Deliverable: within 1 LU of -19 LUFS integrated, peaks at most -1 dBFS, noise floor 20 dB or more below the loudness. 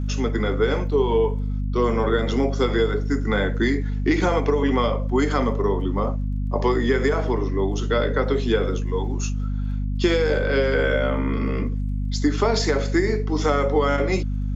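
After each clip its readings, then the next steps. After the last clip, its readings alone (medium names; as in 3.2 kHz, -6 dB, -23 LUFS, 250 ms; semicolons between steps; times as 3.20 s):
tick rate 20 per s; hum 50 Hz; highest harmonic 250 Hz; hum level -22 dBFS; loudness -22.5 LUFS; peak level -7.0 dBFS; loudness target -19.0 LUFS
-> de-click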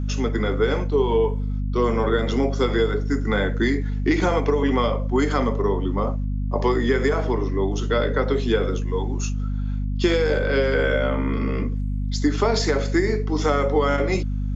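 tick rate 0 per s; hum 50 Hz; highest harmonic 250 Hz; hum level -22 dBFS
-> de-hum 50 Hz, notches 5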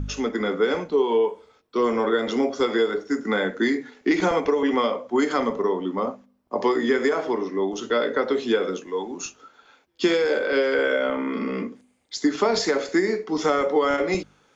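hum not found; loudness -23.5 LUFS; peak level -8.0 dBFS; loudness target -19.0 LUFS
-> trim +4.5 dB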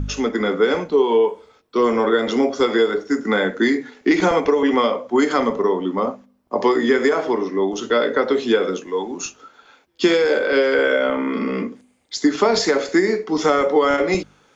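loudness -19.0 LUFS; peak level -3.5 dBFS; noise floor -57 dBFS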